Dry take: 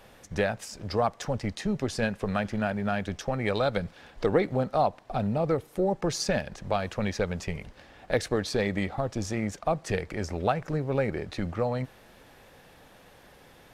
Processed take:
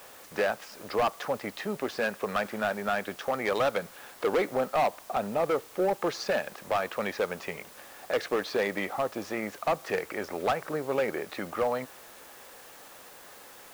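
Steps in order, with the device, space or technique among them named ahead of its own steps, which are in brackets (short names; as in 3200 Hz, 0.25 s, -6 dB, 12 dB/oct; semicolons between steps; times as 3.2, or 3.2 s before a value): drive-through speaker (BPF 360–3300 Hz; bell 1200 Hz +5 dB 0.55 oct; hard clip -23.5 dBFS, distortion -10 dB; white noise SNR 21 dB); gain +2.5 dB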